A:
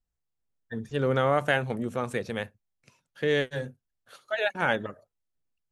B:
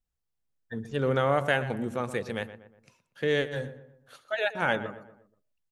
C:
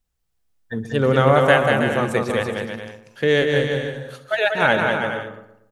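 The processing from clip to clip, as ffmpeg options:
-filter_complex "[0:a]asplit=2[a][b];[b]adelay=120,lowpass=f=1.9k:p=1,volume=-12.5dB,asplit=2[c][d];[d]adelay=120,lowpass=f=1.9k:p=1,volume=0.45,asplit=2[e][f];[f]adelay=120,lowpass=f=1.9k:p=1,volume=0.45,asplit=2[g][h];[h]adelay=120,lowpass=f=1.9k:p=1,volume=0.45[i];[a][c][e][g][i]amix=inputs=5:normalize=0,volume=-1dB"
-af "aecho=1:1:190|323|416.1|481.3|526.9:0.631|0.398|0.251|0.158|0.1,volume=8.5dB"

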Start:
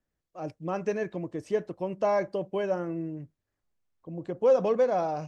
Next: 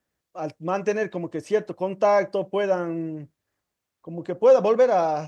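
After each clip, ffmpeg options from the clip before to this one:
-af "highpass=56,lowshelf=f=340:g=-6.5,volume=8dB"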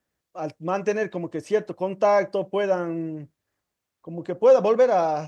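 -af anull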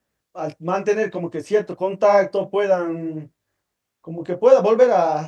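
-af "flanger=delay=17:depth=5.6:speed=1.5,volume=6.5dB"

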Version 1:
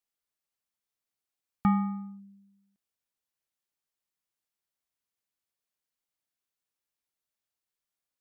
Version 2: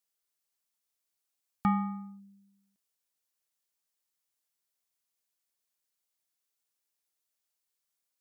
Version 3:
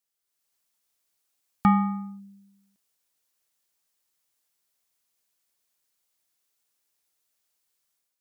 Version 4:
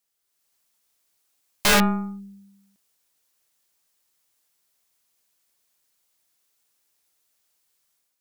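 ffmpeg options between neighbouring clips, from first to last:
-af "bass=f=250:g=-5,treble=f=4k:g=6,bandreject=f=387.7:t=h:w=4,bandreject=f=775.4:t=h:w=4,bandreject=f=1.1631k:t=h:w=4,bandreject=f=1.5508k:t=h:w=4,bandreject=f=1.9385k:t=h:w=4,bandreject=f=2.3262k:t=h:w=4,bandreject=f=2.7139k:t=h:w=4,bandreject=f=3.1016k:t=h:w=4,bandreject=f=3.4893k:t=h:w=4,bandreject=f=3.877k:t=h:w=4,bandreject=f=4.2647k:t=h:w=4,bandreject=f=4.6524k:t=h:w=4,bandreject=f=5.0401k:t=h:w=4,bandreject=f=5.4278k:t=h:w=4,bandreject=f=5.8155k:t=h:w=4,bandreject=f=6.2032k:t=h:w=4,bandreject=f=6.5909k:t=h:w=4,bandreject=f=6.9786k:t=h:w=4,bandreject=f=7.3663k:t=h:w=4,bandreject=f=7.754k:t=h:w=4,bandreject=f=8.1417k:t=h:w=4,bandreject=f=8.5294k:t=h:w=4,bandreject=f=8.9171k:t=h:w=4,bandreject=f=9.3048k:t=h:w=4,bandreject=f=9.6925k:t=h:w=4,bandreject=f=10.0802k:t=h:w=4,bandreject=f=10.4679k:t=h:w=4,bandreject=f=10.8556k:t=h:w=4,bandreject=f=11.2433k:t=h:w=4,bandreject=f=11.631k:t=h:w=4,bandreject=f=12.0187k:t=h:w=4,bandreject=f=12.4064k:t=h:w=4,bandreject=f=12.7941k:t=h:w=4,bandreject=f=13.1818k:t=h:w=4,bandreject=f=13.5695k:t=h:w=4,bandreject=f=13.9572k:t=h:w=4,bandreject=f=14.3449k:t=h:w=4,bandreject=f=14.7326k:t=h:w=4"
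-af "dynaudnorm=f=140:g=5:m=7.5dB"
-af "aeval=exprs='(mod(8.41*val(0)+1,2)-1)/8.41':c=same,aeval=exprs='0.126*(cos(1*acos(clip(val(0)/0.126,-1,1)))-cos(1*PI/2))+0.0224*(cos(4*acos(clip(val(0)/0.126,-1,1)))-cos(4*PI/2))':c=same,volume=5.5dB"

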